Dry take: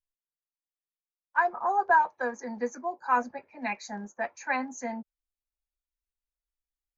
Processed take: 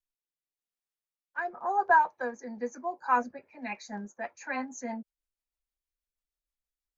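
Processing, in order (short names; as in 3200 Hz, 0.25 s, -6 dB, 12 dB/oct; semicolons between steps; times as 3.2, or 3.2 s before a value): rotary speaker horn 0.9 Hz, later 6.3 Hz, at 3.07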